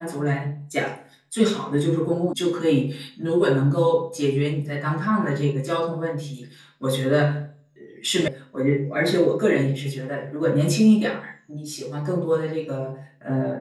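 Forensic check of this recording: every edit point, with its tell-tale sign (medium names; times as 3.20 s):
2.33 s: sound stops dead
8.28 s: sound stops dead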